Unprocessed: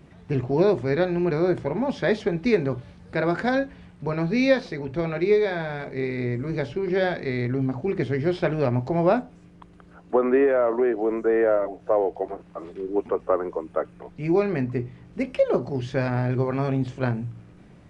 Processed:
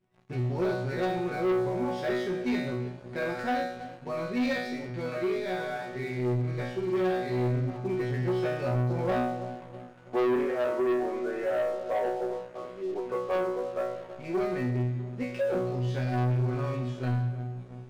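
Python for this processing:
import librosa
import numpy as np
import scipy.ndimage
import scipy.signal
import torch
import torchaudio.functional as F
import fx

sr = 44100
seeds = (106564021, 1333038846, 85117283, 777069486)

y = fx.resonator_bank(x, sr, root=47, chord='fifth', decay_s=0.67)
y = fx.echo_filtered(y, sr, ms=325, feedback_pct=58, hz=830.0, wet_db=-14.0)
y = fx.leveller(y, sr, passes=3)
y = y * 10.0 ** (1.0 / 20.0)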